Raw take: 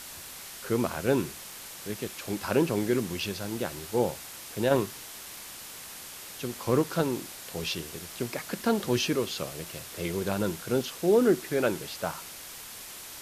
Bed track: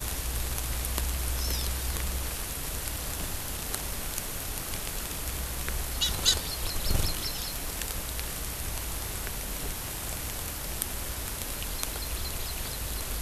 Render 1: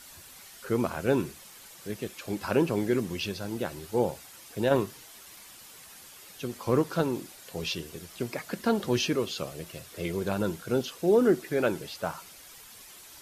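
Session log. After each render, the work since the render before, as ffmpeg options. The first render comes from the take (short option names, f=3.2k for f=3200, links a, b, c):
-af "afftdn=nr=9:nf=-44"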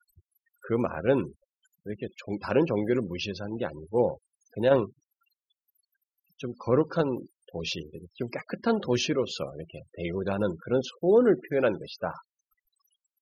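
-af "afftfilt=real='re*gte(hypot(re,im),0.0112)':imag='im*gte(hypot(re,im),0.0112)':win_size=1024:overlap=0.75,adynamicequalizer=threshold=0.01:dfrequency=520:dqfactor=5.9:tfrequency=520:tqfactor=5.9:attack=5:release=100:ratio=0.375:range=3:mode=boostabove:tftype=bell"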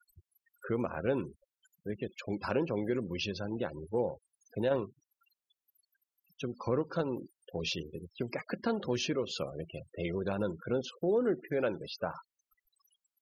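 -af "acompressor=threshold=-33dB:ratio=2"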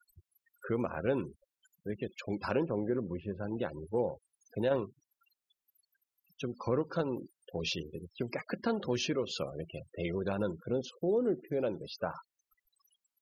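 -filter_complex "[0:a]asettb=1/sr,asplit=3[a][b][c];[a]atrim=end=2.634[d];[b]atrim=start=2.63:end=3.43,asetpts=PTS-STARTPTS,afade=t=in:d=0.004:c=qsin,afade=t=out:st=0.796:d=0.004:c=qsin,lowpass=f=1.5k:w=0.5412,lowpass=f=1.5k:w=1.3066[e];[c]atrim=start=3.426[f];[d][e]acrossfade=d=0.004:c1=hsin:c2=qsin[g];[g][f]acrossfade=d=0.004:c1=qsin:c2=hsin,asettb=1/sr,asplit=3[h][i][j];[h]atrim=end=10.554[k];[i]atrim=start=10.55:end=11.99,asetpts=PTS-STARTPTS,afade=t=in:d=0.004:c=qsin,afade=t=out:st=1.436:d=0.004:c=qsin,equalizer=f=1.7k:w=1.1:g=-11.5[l];[j]atrim=start=11.986[m];[k][l]acrossfade=d=0.004:c1=hsin:c2=qsin[n];[n][m]acrossfade=d=0.004:c1=qsin:c2=hsin"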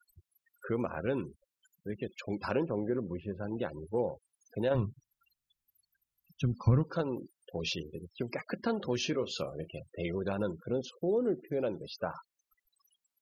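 -filter_complex "[0:a]asettb=1/sr,asplit=3[a][b][c];[a]atrim=end=1.044[d];[b]atrim=start=1.04:end=1.94,asetpts=PTS-STARTPTS,afade=t=in:d=0.004:c=qsin,afade=t=out:st=0.896:d=0.004:c=qsin,equalizer=f=690:w=1.5:g=-4.5[e];[c]atrim=start=1.936[f];[d][e]acrossfade=d=0.004:c1=hsin:c2=qsin[g];[g][f]acrossfade=d=0.004:c1=qsin:c2=hsin,asplit=3[h][i][j];[h]afade=t=out:st=4.74:d=0.02[k];[i]asubboost=boost=11:cutoff=130,afade=t=in:st=4.74:d=0.02,afade=t=out:st=6.83:d=0.02[l];[j]afade=t=in:st=6.83:d=0.02[m];[k][l][m]amix=inputs=3:normalize=0,asettb=1/sr,asplit=3[n][o][p];[n]atrim=end=9.004[q];[o]atrim=start=9:end=9.68,asetpts=PTS-STARTPTS,afade=t=in:d=0.004:c=qsin,afade=t=out:st=0.676:d=0.004:c=qsin,asplit=2[r][s];[s]adelay=32,volume=-13dB[t];[r][t]amix=inputs=2:normalize=0,atrim=end_sample=29988[u];[p]atrim=start=9.676[v];[q][u]acrossfade=d=0.004:c1=hsin:c2=qsin[w];[w][v]acrossfade=d=0.004:c1=qsin:c2=hsin"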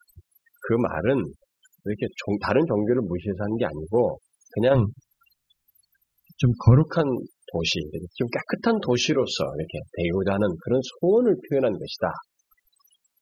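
-af "volume=10.5dB"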